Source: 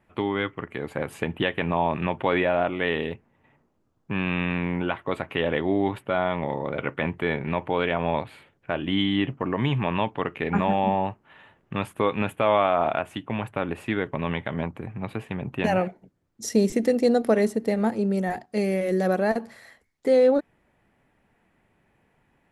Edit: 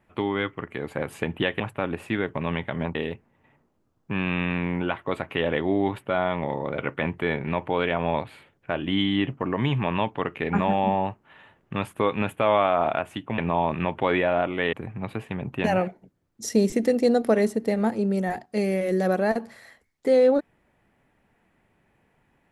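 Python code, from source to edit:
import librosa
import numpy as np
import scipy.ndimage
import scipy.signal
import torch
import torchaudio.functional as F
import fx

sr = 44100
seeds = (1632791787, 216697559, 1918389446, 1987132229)

y = fx.edit(x, sr, fx.swap(start_s=1.6, length_s=1.35, other_s=13.38, other_length_s=1.35), tone=tone)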